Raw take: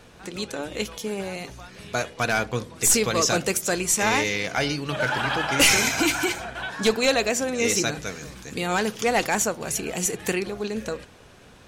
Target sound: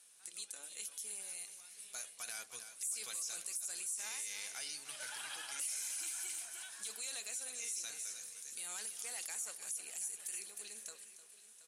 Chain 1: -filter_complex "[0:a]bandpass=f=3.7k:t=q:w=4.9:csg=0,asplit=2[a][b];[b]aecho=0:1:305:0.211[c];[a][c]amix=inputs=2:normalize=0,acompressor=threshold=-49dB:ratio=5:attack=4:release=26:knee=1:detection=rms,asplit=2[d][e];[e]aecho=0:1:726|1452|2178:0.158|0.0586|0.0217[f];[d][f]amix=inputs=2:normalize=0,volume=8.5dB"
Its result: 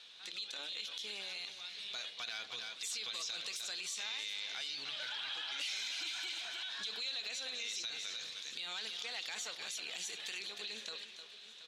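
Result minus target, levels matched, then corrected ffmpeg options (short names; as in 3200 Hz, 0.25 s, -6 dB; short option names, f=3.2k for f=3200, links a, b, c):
4000 Hz band +9.5 dB
-filter_complex "[0:a]bandpass=f=9.7k:t=q:w=4.9:csg=0,asplit=2[a][b];[b]aecho=0:1:305:0.211[c];[a][c]amix=inputs=2:normalize=0,acompressor=threshold=-49dB:ratio=5:attack=4:release=26:knee=1:detection=rms,asplit=2[d][e];[e]aecho=0:1:726|1452|2178:0.158|0.0586|0.0217[f];[d][f]amix=inputs=2:normalize=0,volume=8.5dB"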